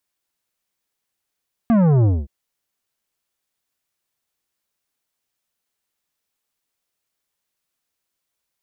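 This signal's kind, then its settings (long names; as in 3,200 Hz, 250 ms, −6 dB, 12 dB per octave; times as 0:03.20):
bass drop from 240 Hz, over 0.57 s, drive 11.5 dB, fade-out 0.22 s, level −13 dB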